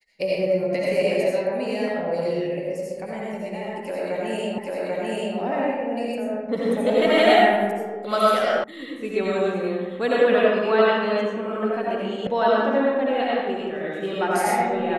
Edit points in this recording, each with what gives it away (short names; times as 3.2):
4.58 repeat of the last 0.79 s
8.64 sound cut off
12.27 sound cut off